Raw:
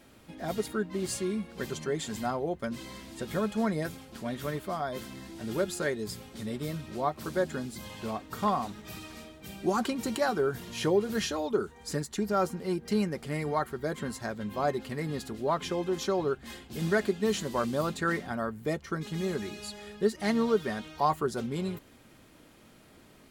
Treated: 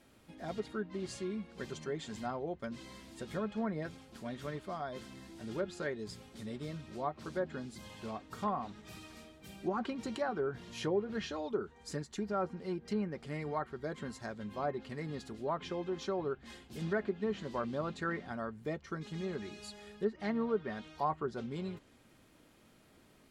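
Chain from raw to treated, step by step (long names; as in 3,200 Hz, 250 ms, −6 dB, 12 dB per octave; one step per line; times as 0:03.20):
treble cut that deepens with the level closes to 1,900 Hz, closed at −23 dBFS
level −7 dB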